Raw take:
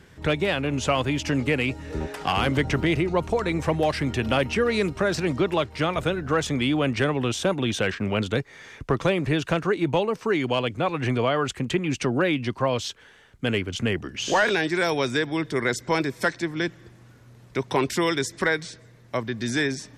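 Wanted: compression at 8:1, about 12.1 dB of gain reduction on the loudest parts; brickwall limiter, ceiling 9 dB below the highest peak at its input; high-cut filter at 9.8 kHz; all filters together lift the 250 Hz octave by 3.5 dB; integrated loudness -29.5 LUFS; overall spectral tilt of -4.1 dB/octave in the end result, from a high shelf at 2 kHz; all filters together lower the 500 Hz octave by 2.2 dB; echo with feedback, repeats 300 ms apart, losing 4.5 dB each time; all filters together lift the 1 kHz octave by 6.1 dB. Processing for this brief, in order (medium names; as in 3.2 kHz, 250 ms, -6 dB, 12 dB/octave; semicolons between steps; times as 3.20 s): low-pass 9.8 kHz; peaking EQ 250 Hz +6.5 dB; peaking EQ 500 Hz -7.5 dB; peaking EQ 1 kHz +7.5 dB; treble shelf 2 kHz +7 dB; compression 8:1, threshold -24 dBFS; peak limiter -20.5 dBFS; feedback delay 300 ms, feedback 60%, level -4.5 dB; trim -0.5 dB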